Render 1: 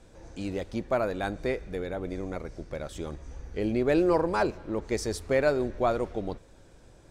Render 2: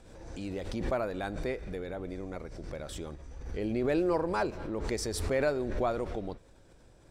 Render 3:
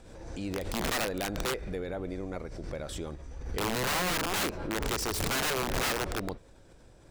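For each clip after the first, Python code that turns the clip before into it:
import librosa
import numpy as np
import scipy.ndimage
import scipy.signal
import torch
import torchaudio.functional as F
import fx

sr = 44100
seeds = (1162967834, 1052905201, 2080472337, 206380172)

y1 = fx.notch(x, sr, hz=6500.0, q=18.0)
y1 = fx.pre_swell(y1, sr, db_per_s=42.0)
y1 = y1 * 10.0 ** (-5.0 / 20.0)
y2 = (np.mod(10.0 ** (27.0 / 20.0) * y1 + 1.0, 2.0) - 1.0) / 10.0 ** (27.0 / 20.0)
y2 = y2 * 10.0 ** (2.5 / 20.0)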